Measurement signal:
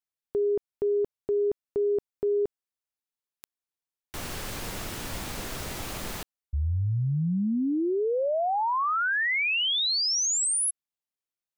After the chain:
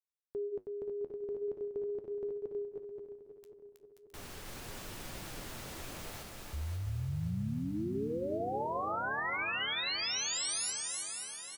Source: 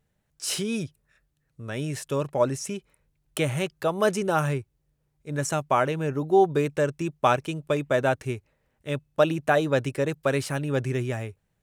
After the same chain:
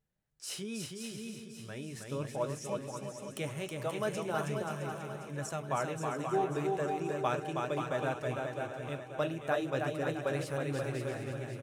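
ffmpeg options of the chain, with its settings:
ffmpeg -i in.wav -filter_complex "[0:a]asplit=2[link_01][link_02];[link_02]aecho=0:1:320|528|663.2|751.1|808.2:0.631|0.398|0.251|0.158|0.1[link_03];[link_01][link_03]amix=inputs=2:normalize=0,flanger=delay=5:depth=9.2:regen=-67:speed=0.39:shape=triangular,asplit=2[link_04][link_05];[link_05]aecho=0:1:537|1074|1611|2148|2685|3222|3759:0.299|0.176|0.104|0.0613|0.0362|0.0213|0.0126[link_06];[link_04][link_06]amix=inputs=2:normalize=0,volume=-7.5dB" out.wav

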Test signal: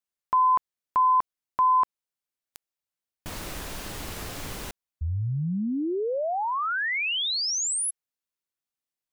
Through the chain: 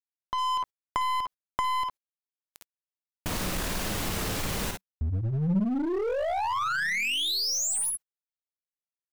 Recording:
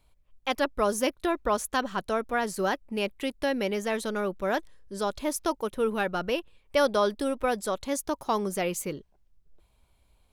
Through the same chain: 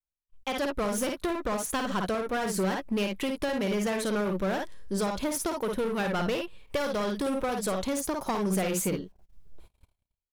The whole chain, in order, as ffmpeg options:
ffmpeg -i in.wav -filter_complex "[0:a]asplit=2[link_01][link_02];[link_02]aecho=0:1:53|64:0.473|0.211[link_03];[link_01][link_03]amix=inputs=2:normalize=0,aeval=exprs='(tanh(12.6*val(0)+0.45)-tanh(0.45))/12.6':channel_layout=same,dynaudnorm=framelen=110:gausssize=11:maxgain=11dB,agate=range=-33dB:threshold=-50dB:ratio=3:release=40:detection=rms,asplit=2[link_04][link_05];[link_05]aeval=exprs='0.0841*(abs(mod(val(0)/0.0841+3,4)-2)-1)':channel_layout=same,volume=-5dB[link_06];[link_04][link_06]amix=inputs=2:normalize=0,acompressor=threshold=-21dB:ratio=5:attack=10:release=483:knee=6:detection=peak,adynamicequalizer=threshold=0.00708:dfrequency=190:dqfactor=4.9:tfrequency=190:tqfactor=4.9:attack=5:release=100:ratio=0.375:range=3:mode=boostabove:tftype=bell,volume=-5dB" out.wav

